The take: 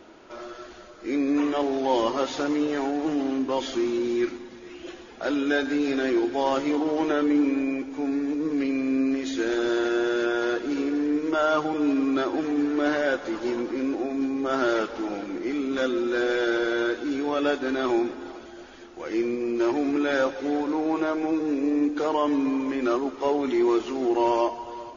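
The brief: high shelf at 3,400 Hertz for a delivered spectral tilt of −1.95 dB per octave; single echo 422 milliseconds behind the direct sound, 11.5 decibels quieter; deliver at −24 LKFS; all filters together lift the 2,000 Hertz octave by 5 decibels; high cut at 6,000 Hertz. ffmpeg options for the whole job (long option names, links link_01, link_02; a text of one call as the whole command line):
ffmpeg -i in.wav -af "lowpass=6000,equalizer=frequency=2000:width_type=o:gain=5.5,highshelf=frequency=3400:gain=6.5,aecho=1:1:422:0.266" out.wav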